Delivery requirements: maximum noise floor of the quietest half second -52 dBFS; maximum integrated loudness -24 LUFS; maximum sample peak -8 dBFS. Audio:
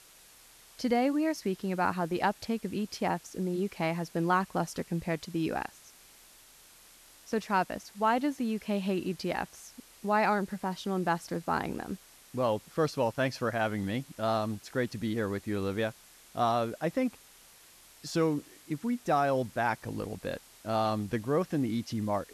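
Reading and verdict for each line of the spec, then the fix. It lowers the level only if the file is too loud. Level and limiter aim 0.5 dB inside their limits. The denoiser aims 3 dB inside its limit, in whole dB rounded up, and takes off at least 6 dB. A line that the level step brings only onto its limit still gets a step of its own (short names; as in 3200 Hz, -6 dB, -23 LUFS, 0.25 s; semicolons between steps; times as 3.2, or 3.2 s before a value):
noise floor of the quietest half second -57 dBFS: OK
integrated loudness -31.5 LUFS: OK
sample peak -14.5 dBFS: OK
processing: none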